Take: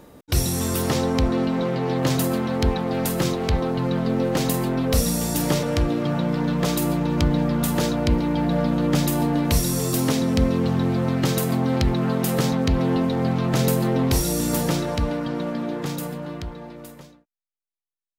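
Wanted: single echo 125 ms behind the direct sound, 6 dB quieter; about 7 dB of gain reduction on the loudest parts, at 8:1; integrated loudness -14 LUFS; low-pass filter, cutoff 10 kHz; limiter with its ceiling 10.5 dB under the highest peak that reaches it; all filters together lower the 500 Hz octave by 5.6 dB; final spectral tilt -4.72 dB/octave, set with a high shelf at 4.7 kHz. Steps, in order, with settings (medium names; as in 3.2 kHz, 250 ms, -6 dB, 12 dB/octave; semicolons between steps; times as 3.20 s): low-pass 10 kHz; peaking EQ 500 Hz -7 dB; treble shelf 4.7 kHz +8 dB; compression 8:1, threshold -22 dBFS; peak limiter -19 dBFS; delay 125 ms -6 dB; trim +14 dB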